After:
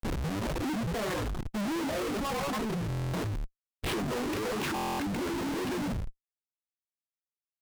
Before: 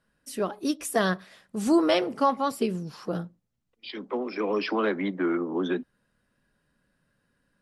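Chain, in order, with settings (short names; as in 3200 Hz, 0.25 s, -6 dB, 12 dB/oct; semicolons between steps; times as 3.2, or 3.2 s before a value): tape start at the beginning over 0.70 s; high shelf 2700 Hz +8.5 dB; frequency-shifting echo 88 ms, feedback 40%, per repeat -67 Hz, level -6 dB; chorus 1.1 Hz, delay 18 ms, depth 2.8 ms; negative-ratio compressor -31 dBFS, ratio -1; tape spacing loss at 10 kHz 33 dB; Schmitt trigger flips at -44 dBFS; reverb removal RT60 1.8 s; hard clip -37.5 dBFS, distortion -17 dB; stuck buffer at 2.88/4.74, samples 1024, times 10; Doppler distortion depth 0.39 ms; gain +7 dB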